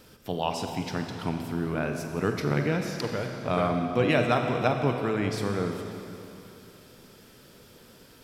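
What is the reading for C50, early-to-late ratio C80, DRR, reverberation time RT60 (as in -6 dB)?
4.5 dB, 5.5 dB, 3.5 dB, 2.9 s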